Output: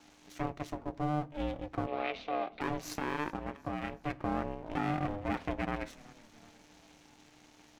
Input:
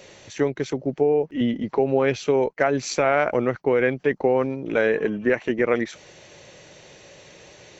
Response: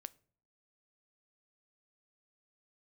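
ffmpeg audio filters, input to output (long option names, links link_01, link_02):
-filter_complex "[0:a]asplit=3[link_01][link_02][link_03];[link_01]afade=type=out:start_time=3.27:duration=0.02[link_04];[link_02]acompressor=threshold=-24dB:ratio=2.5,afade=type=in:start_time=3.27:duration=0.02,afade=type=out:start_time=3.98:duration=0.02[link_05];[link_03]afade=type=in:start_time=3.98:duration=0.02[link_06];[link_04][link_05][link_06]amix=inputs=3:normalize=0,asettb=1/sr,asplit=3[link_07][link_08][link_09];[link_07]atrim=end=4.774[link_10];[link_08]atrim=start=4.77:end=5.56,asetpts=PTS-STARTPTS,afade=type=in:duration=0.004:curve=qsin,afade=type=out:start_time=0.786:duration=0.004:curve=qsin,equalizer=frequency=690:width_type=o:width=2.3:gain=9[link_11];[link_09]atrim=start=5.556[link_12];[link_10][link_11]acrossfade=duration=0.004:curve1=hsin:curve2=qsin[link_13];[link_13][link_12]acrossfade=duration=0.004:curve1=qsin:curve2=hsin,alimiter=limit=-12.5dB:level=0:latency=1:release=19,aeval=exprs='max(val(0),0)':channel_layout=same,aeval=exprs='val(0)*sin(2*PI*300*n/s)':channel_layout=same,asettb=1/sr,asplit=3[link_14][link_15][link_16];[link_14]atrim=end=1.874[link_17];[link_15]atrim=start=1.87:end=2.61,asetpts=PTS-STARTPTS,afade=type=in:duration=0.004:curve=qsin,afade=type=out:start_time=0.736:duration=0.004:curve=qsin,highpass=440,equalizer=frequency=440:width_type=q:width=4:gain=5,equalizer=frequency=660:width_type=q:width=4:gain=5,equalizer=frequency=950:width_type=q:width=4:gain=-4,equalizer=frequency=1600:width_type=q:width=4:gain=-4,equalizer=frequency=2400:width_type=q:width=4:gain=7,equalizer=frequency=3800:width_type=q:width=4:gain=6,lowpass=frequency=4300:width=0.5412,lowpass=frequency=4300:width=1.3066[link_18];[link_16]atrim=start=2.606[link_19];[link_17][link_18]acrossfade=duration=0.004:curve1=hsin:curve2=qsin[link_20];[link_20][link_19]acrossfade=duration=0.004:curve1=qsin:curve2=hsin,asplit=5[link_21][link_22][link_23][link_24][link_25];[link_22]adelay=372,afreqshift=-38,volume=-23dB[link_26];[link_23]adelay=744,afreqshift=-76,volume=-28.4dB[link_27];[link_24]adelay=1116,afreqshift=-114,volume=-33.7dB[link_28];[link_25]adelay=1488,afreqshift=-152,volume=-39.1dB[link_29];[link_21][link_26][link_27][link_28][link_29]amix=inputs=5:normalize=0[link_30];[1:a]atrim=start_sample=2205,asetrate=48510,aresample=44100[link_31];[link_30][link_31]afir=irnorm=-1:irlink=0"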